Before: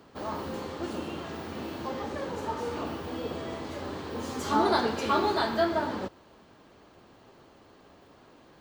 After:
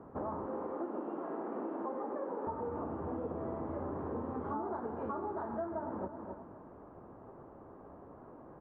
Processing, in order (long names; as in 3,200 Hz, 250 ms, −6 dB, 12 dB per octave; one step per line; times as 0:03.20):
0:00.46–0:02.47: high-pass filter 250 Hz 24 dB per octave
repeating echo 264 ms, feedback 26%, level −15 dB
downward compressor 10 to 1, threshold −38 dBFS, peak gain reduction 18.5 dB
low-pass filter 1,200 Hz 24 dB per octave
level +3.5 dB